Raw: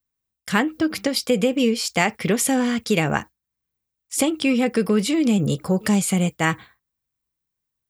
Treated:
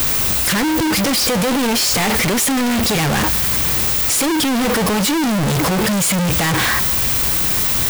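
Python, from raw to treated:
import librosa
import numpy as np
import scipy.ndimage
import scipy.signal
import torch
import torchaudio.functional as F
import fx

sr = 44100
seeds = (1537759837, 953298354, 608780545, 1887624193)

y = np.sign(x) * np.sqrt(np.mean(np.square(x)))
y = F.gain(torch.from_numpy(y), 6.0).numpy()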